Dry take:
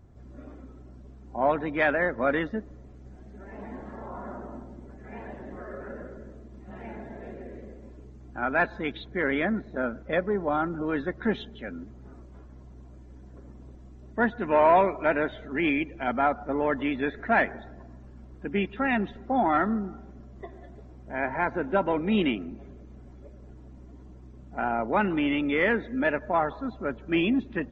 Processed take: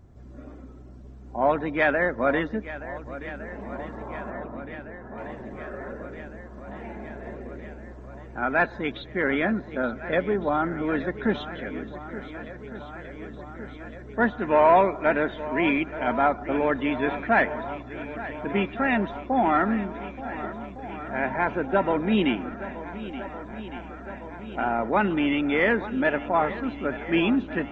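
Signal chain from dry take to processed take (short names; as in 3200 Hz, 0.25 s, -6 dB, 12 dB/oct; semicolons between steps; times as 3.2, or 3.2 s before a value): 4.3–5.18 steep low-pass 1800 Hz 96 dB/oct; on a send: swung echo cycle 1.459 s, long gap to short 1.5:1, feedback 68%, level -15 dB; on the sum: gain +2 dB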